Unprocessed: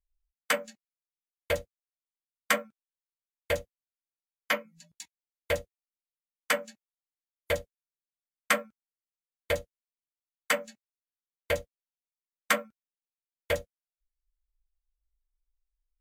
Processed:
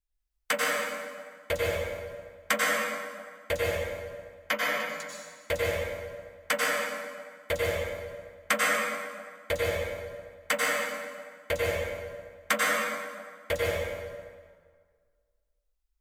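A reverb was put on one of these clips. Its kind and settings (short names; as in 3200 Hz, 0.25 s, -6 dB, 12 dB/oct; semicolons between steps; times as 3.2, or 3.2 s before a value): plate-style reverb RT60 1.8 s, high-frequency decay 0.7×, pre-delay 80 ms, DRR -5 dB; gain -1.5 dB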